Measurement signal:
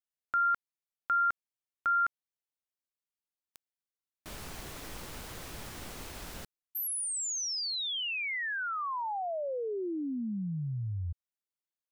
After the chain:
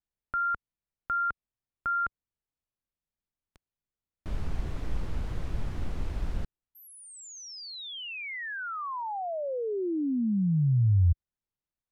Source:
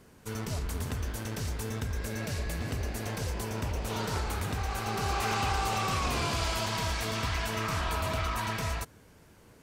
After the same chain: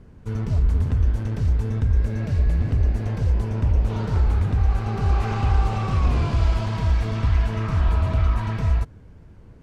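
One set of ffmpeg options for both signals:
-af "aemphasis=mode=reproduction:type=riaa"

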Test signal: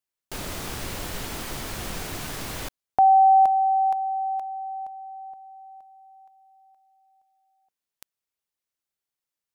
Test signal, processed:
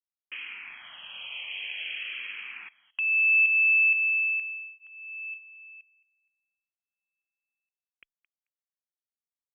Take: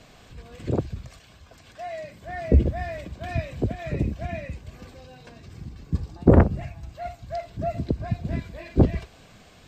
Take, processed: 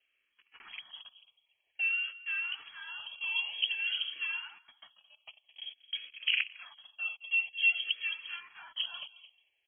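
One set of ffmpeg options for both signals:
-filter_complex "[0:a]highpass=130,agate=range=0.0501:threshold=0.00631:ratio=16:release=76:detection=rms,equalizer=f=940:w=1.5:g=11.5,acrossover=split=480|1400[s0][s1][s2];[s0]acompressor=threshold=0.0251:ratio=2.5[s3];[s1]acompressor=threshold=0.0708:ratio=2[s4];[s2]acompressor=threshold=0.00447:ratio=5[s5];[s3][s4][s5]amix=inputs=3:normalize=0,asplit=2[s6][s7];[s7]adelay=219,lowpass=f=1600:p=1,volume=0.158,asplit=2[s8][s9];[s9]adelay=219,lowpass=f=1600:p=1,volume=0.21[s10];[s8][s10]amix=inputs=2:normalize=0[s11];[s6][s11]amix=inputs=2:normalize=0,lowpass=f=2900:t=q:w=0.5098,lowpass=f=2900:t=q:w=0.6013,lowpass=f=2900:t=q:w=0.9,lowpass=f=2900:t=q:w=2.563,afreqshift=-3400,asplit=2[s12][s13];[s13]afreqshift=-0.51[s14];[s12][s14]amix=inputs=2:normalize=1,volume=0.794"

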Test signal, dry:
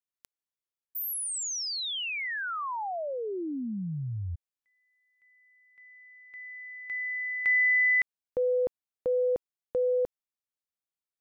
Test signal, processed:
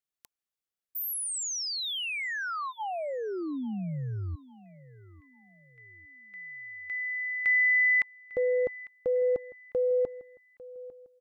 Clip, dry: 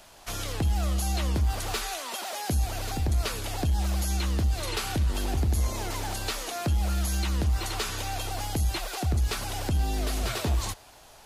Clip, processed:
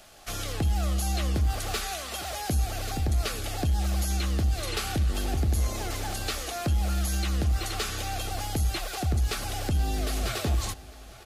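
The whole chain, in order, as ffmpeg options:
-filter_complex "[0:a]asuperstop=centerf=960:order=8:qfactor=6.7,asplit=2[s0][s1];[s1]adelay=850,lowpass=f=3400:p=1,volume=0.112,asplit=2[s2][s3];[s3]adelay=850,lowpass=f=3400:p=1,volume=0.37,asplit=2[s4][s5];[s5]adelay=850,lowpass=f=3400:p=1,volume=0.37[s6];[s0][s2][s4][s6]amix=inputs=4:normalize=0"

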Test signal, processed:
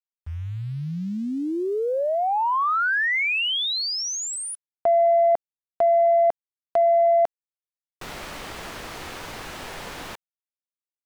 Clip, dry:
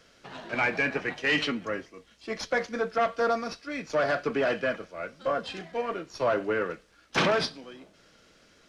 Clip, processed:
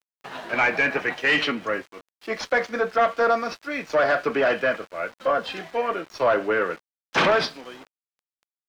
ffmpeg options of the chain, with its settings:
-filter_complex "[0:a]aeval=exprs='val(0)*gte(abs(val(0)),0.00422)':c=same,asplit=2[s0][s1];[s1]highpass=f=720:p=1,volume=3.16,asoftclip=type=tanh:threshold=0.251[s2];[s0][s2]amix=inputs=2:normalize=0,lowpass=f=2300:p=1,volume=0.501,volume=1.58"

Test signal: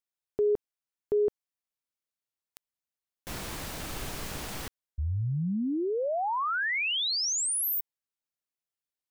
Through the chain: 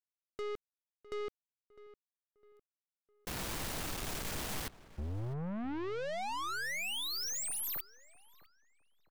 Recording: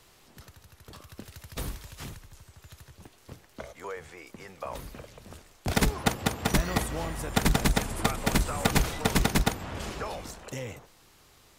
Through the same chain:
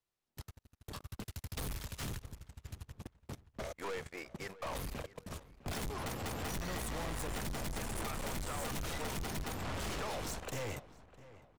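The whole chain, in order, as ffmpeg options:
-filter_complex "[0:a]agate=range=0.01:threshold=0.00282:ratio=16:release=20:detection=peak,acompressor=threshold=0.0251:ratio=6:attack=66:release=266:detection=rms,aeval=exprs='(tanh(178*val(0)+0.35)-tanh(0.35))/178':c=same,asplit=2[s0][s1];[s1]adelay=656,lowpass=f=2300:p=1,volume=0.141,asplit=2[s2][s3];[s3]adelay=656,lowpass=f=2300:p=1,volume=0.4,asplit=2[s4][s5];[s5]adelay=656,lowpass=f=2300:p=1,volume=0.4[s6];[s2][s4][s6]amix=inputs=3:normalize=0[s7];[s0][s7]amix=inputs=2:normalize=0,volume=2.37"

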